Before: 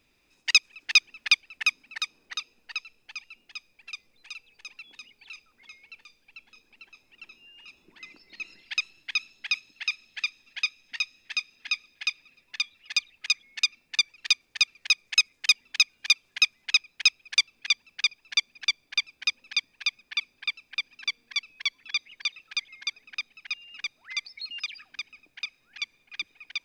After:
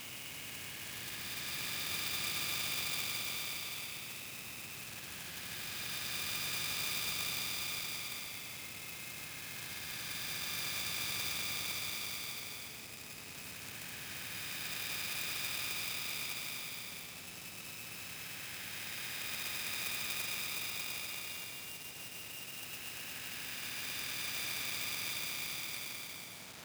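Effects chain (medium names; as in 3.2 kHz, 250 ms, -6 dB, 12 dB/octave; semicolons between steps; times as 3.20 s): tracing distortion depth 0.11 ms; peaking EQ 140 Hz +12 dB 2.5 oct; feedback echo behind a low-pass 239 ms, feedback 59%, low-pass 420 Hz, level -7.5 dB; in parallel at -3 dB: compression 6:1, threshold -32 dBFS, peak gain reduction 19.5 dB; on the sum: low-pass 6.4 kHz 24 dB/octave; peaking EQ 1.1 kHz -12 dB 0.56 oct; Paulstretch 14×, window 0.25 s, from 22.08 s; companded quantiser 4-bit; high-pass 92 Hz 24 dB/octave; spectrum-flattening compressor 2:1; trim -6.5 dB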